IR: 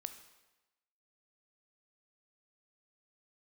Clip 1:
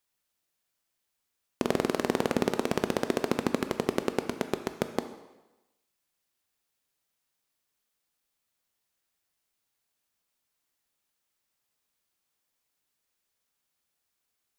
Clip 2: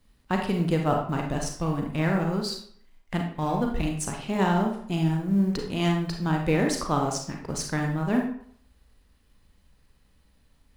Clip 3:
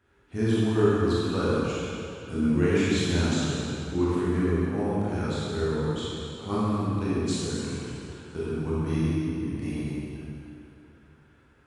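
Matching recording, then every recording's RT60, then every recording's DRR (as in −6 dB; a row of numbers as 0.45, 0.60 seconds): 1; 1.1, 0.60, 2.8 seconds; 8.5, 1.5, −9.5 decibels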